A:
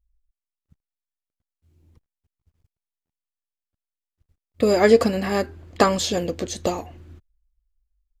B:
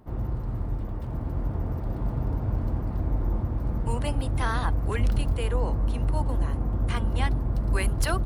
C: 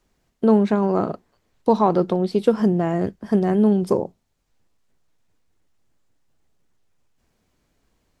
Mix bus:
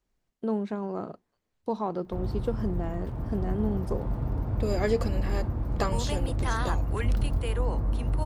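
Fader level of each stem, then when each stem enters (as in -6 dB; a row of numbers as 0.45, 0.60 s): -12.0, -2.0, -13.0 dB; 0.00, 2.05, 0.00 s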